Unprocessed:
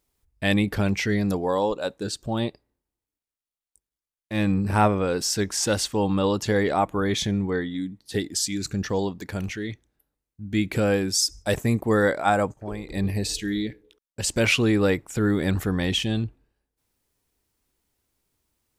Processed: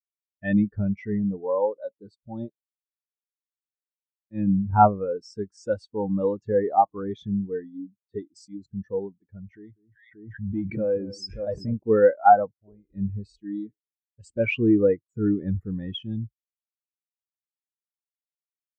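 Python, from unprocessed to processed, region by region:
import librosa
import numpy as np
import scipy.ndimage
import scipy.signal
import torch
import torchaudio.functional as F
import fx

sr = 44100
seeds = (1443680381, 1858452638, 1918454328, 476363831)

y = fx.chain(x, sr, fx.clip_hard(threshold_db=-20.0),
    fx.echo_alternate(ms=194, hz=1700.0, feedback_pct=69, wet_db=-10.0),
    fx.pre_swell(db_per_s=21.0), at=(9.53, 11.77))
y = fx.dynamic_eq(y, sr, hz=1100.0, q=0.88, threshold_db=-37.0, ratio=4.0, max_db=4)
y = fx.spectral_expand(y, sr, expansion=2.5)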